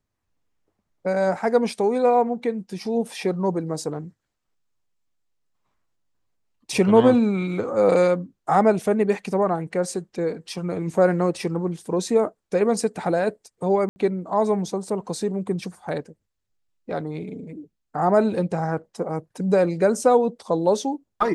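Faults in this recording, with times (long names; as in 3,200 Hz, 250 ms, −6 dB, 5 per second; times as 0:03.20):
0:13.89–0:13.96: drop-out 70 ms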